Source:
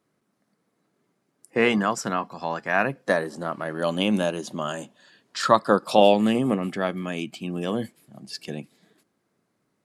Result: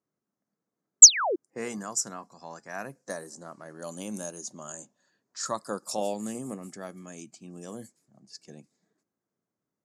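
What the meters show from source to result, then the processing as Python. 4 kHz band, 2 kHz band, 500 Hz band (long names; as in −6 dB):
+2.0 dB, −11.5 dB, −12.5 dB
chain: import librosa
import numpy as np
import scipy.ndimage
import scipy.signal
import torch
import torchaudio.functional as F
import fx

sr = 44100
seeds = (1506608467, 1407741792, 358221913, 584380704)

y = fx.env_lowpass(x, sr, base_hz=2400.0, full_db=-20.5)
y = fx.spec_paint(y, sr, seeds[0], shape='fall', start_s=1.02, length_s=0.34, low_hz=310.0, high_hz=8200.0, level_db=-12.0)
y = fx.high_shelf_res(y, sr, hz=4600.0, db=14.0, q=3.0)
y = y * librosa.db_to_amplitude(-14.0)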